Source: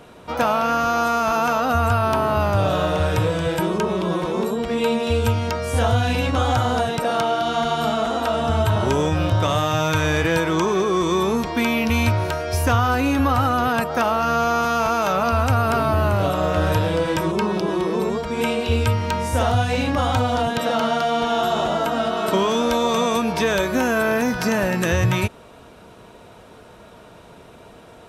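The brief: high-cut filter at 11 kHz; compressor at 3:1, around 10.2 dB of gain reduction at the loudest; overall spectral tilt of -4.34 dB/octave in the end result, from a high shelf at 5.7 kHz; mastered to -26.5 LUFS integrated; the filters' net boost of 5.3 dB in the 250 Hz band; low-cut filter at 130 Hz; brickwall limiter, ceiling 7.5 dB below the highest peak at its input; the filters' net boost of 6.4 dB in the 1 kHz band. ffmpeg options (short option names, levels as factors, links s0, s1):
-af "highpass=130,lowpass=11000,equalizer=f=250:t=o:g=6.5,equalizer=f=1000:t=o:g=8,highshelf=f=5700:g=4.5,acompressor=threshold=0.0562:ratio=3,volume=1.06,alimiter=limit=0.141:level=0:latency=1"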